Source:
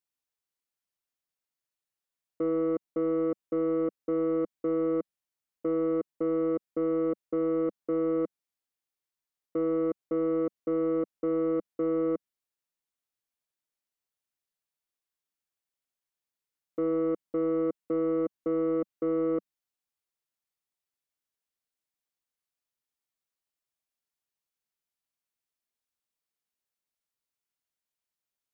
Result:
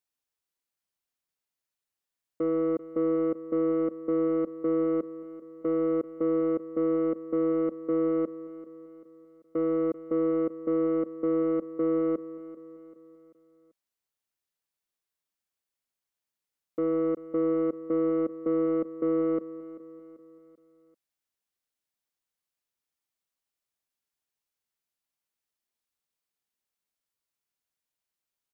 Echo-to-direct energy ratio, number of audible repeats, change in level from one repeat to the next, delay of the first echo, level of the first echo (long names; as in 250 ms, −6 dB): −15.5 dB, 3, −6.5 dB, 389 ms, −16.5 dB